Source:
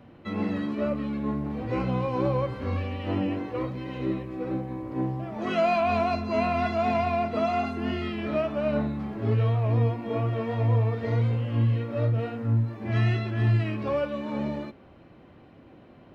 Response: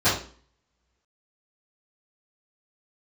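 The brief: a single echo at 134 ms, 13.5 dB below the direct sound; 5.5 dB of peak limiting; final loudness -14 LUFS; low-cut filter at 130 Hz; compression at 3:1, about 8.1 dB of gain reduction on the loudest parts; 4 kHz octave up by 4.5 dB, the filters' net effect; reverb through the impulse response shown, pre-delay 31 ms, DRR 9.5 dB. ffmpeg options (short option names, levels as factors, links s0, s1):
-filter_complex "[0:a]highpass=130,equalizer=f=4000:t=o:g=6,acompressor=threshold=0.0251:ratio=3,alimiter=level_in=1.5:limit=0.0631:level=0:latency=1,volume=0.668,aecho=1:1:134:0.211,asplit=2[s0][s1];[1:a]atrim=start_sample=2205,adelay=31[s2];[s1][s2]afir=irnorm=-1:irlink=0,volume=0.0447[s3];[s0][s3]amix=inputs=2:normalize=0,volume=11.9"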